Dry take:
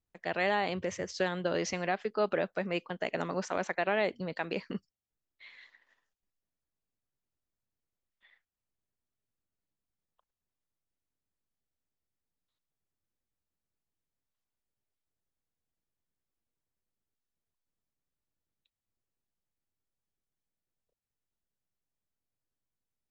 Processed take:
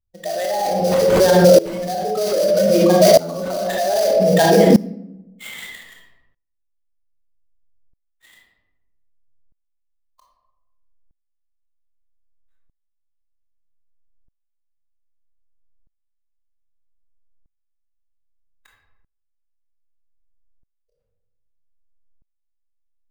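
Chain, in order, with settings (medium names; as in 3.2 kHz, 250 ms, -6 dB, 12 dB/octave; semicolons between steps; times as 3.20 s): spectral contrast enhancement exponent 2.7; peaking EQ 630 Hz +4.5 dB 0.44 oct; sample-rate reducer 5.4 kHz, jitter 20%; reverberation RT60 0.85 s, pre-delay 20 ms, DRR -1 dB; loudness maximiser +27.5 dB; sawtooth tremolo in dB swelling 0.63 Hz, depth 20 dB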